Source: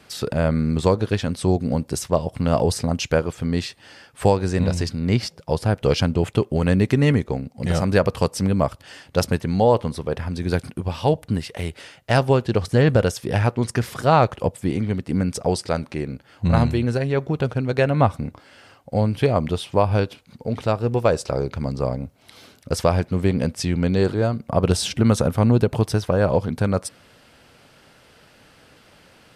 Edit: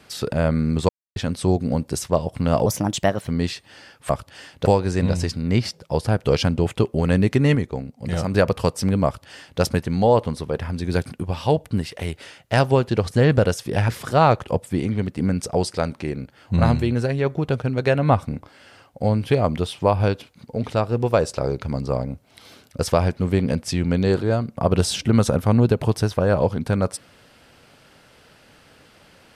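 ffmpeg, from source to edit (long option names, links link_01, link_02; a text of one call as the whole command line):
ffmpeg -i in.wav -filter_complex "[0:a]asplit=10[link_01][link_02][link_03][link_04][link_05][link_06][link_07][link_08][link_09][link_10];[link_01]atrim=end=0.89,asetpts=PTS-STARTPTS,afade=type=out:start_time=0.886:duration=0.004:curve=hsin[link_11];[link_02]atrim=start=0.89:end=1.16,asetpts=PTS-STARTPTS,volume=0[link_12];[link_03]atrim=start=1.16:end=2.664,asetpts=PTS-STARTPTS,afade=type=in:duration=0.004:curve=hsin[link_13];[link_04]atrim=start=2.66:end=3.41,asetpts=PTS-STARTPTS,asetrate=53802,aresample=44100[link_14];[link_05]atrim=start=3.406:end=4.232[link_15];[link_06]atrim=start=8.618:end=9.182[link_16];[link_07]atrim=start=4.228:end=7.132[link_17];[link_08]atrim=start=7.128:end=7.922,asetpts=PTS-STARTPTS,volume=-3dB[link_18];[link_09]atrim=start=7.918:end=13.462[link_19];[link_10]atrim=start=13.798[link_20];[link_11][link_12][link_13]concat=n=3:v=0:a=1[link_21];[link_21][link_14]acrossfade=duration=0.004:curve1=hsin:curve2=hsin[link_22];[link_22][link_15]acrossfade=duration=0.004:curve1=hsin:curve2=hsin[link_23];[link_23][link_16]acrossfade=duration=0.004:curve1=hsin:curve2=hsin[link_24];[link_24][link_17]acrossfade=duration=0.004:curve1=hsin:curve2=hsin[link_25];[link_25][link_18]acrossfade=duration=0.004:curve1=hsin:curve2=hsin[link_26];[link_26][link_19]acrossfade=duration=0.004:curve1=hsin:curve2=hsin[link_27];[link_27][link_20]acrossfade=duration=0.004:curve1=hsin:curve2=hsin" out.wav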